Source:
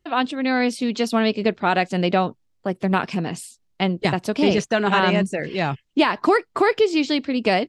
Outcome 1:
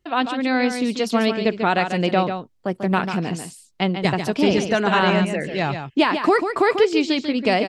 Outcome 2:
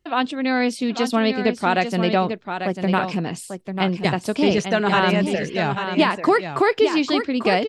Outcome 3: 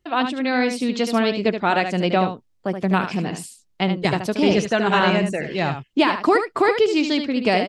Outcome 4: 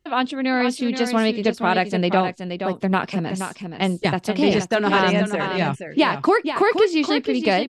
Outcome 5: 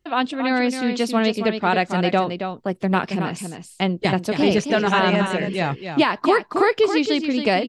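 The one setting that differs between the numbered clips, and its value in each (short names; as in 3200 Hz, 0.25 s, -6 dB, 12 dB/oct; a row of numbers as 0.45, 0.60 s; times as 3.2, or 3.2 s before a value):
echo, time: 143, 844, 75, 474, 273 ms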